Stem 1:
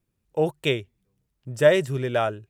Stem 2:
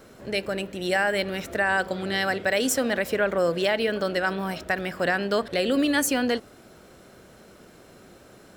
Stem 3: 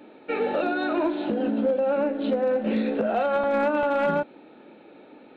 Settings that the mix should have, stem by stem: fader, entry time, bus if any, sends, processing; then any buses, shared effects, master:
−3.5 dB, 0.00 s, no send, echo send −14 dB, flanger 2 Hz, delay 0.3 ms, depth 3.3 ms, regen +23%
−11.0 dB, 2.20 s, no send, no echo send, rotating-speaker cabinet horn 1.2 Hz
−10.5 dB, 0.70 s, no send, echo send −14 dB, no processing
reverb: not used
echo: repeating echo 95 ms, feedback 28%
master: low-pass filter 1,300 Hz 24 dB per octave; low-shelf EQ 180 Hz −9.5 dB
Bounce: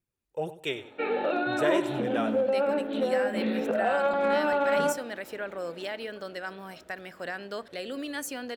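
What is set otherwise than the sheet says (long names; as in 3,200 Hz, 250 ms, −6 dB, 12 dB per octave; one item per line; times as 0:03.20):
stem 2: missing rotating-speaker cabinet horn 1.2 Hz
stem 3 −10.5 dB → −1.5 dB
master: missing low-pass filter 1,300 Hz 24 dB per octave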